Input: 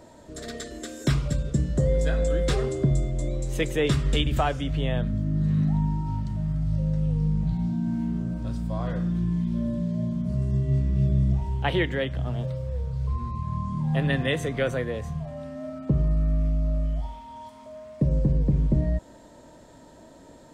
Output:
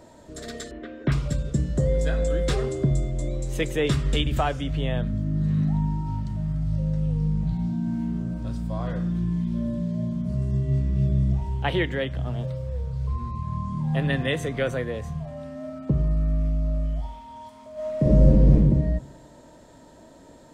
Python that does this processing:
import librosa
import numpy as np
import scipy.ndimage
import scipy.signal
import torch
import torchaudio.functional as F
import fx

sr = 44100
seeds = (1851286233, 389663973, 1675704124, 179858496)

y = fx.lowpass(x, sr, hz=2700.0, slope=24, at=(0.71, 1.12))
y = fx.reverb_throw(y, sr, start_s=17.73, length_s=0.8, rt60_s=1.0, drr_db=-8.0)